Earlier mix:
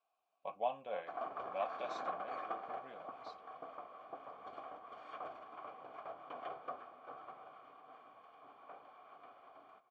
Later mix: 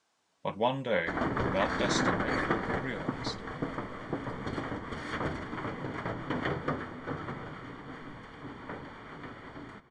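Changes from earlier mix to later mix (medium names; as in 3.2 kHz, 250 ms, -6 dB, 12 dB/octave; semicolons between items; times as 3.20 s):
background: add peaking EQ 150 Hz +6 dB 2.6 oct; master: remove vowel filter a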